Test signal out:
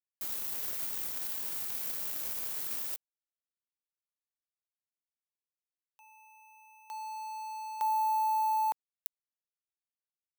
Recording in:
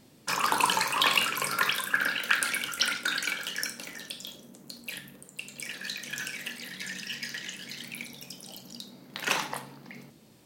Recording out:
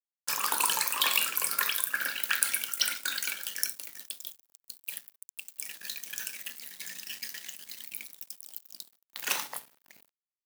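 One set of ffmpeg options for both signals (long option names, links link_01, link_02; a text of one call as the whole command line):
ffmpeg -i in.wav -af "aeval=exprs='sgn(val(0))*max(abs(val(0))-0.00668,0)':channel_layout=same,aemphasis=mode=production:type=bsi,volume=-5.5dB" out.wav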